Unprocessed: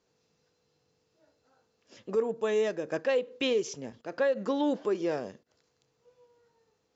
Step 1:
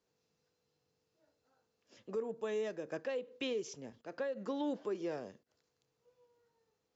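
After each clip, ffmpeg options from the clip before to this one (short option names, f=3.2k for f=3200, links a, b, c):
-filter_complex "[0:a]acrossover=split=340[a][b];[b]acompressor=threshold=-28dB:ratio=6[c];[a][c]amix=inputs=2:normalize=0,volume=-8dB"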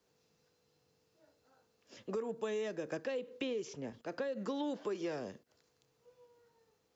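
-filter_complex "[0:a]acrossover=split=420|860|3200[a][b][c][d];[a]acompressor=threshold=-46dB:ratio=4[e];[b]acompressor=threshold=-51dB:ratio=4[f];[c]acompressor=threshold=-54dB:ratio=4[g];[d]acompressor=threshold=-60dB:ratio=4[h];[e][f][g][h]amix=inputs=4:normalize=0,volume=6.5dB"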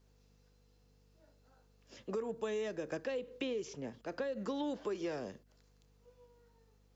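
-af "aeval=exprs='val(0)+0.000447*(sin(2*PI*50*n/s)+sin(2*PI*2*50*n/s)/2+sin(2*PI*3*50*n/s)/3+sin(2*PI*4*50*n/s)/4+sin(2*PI*5*50*n/s)/5)':c=same"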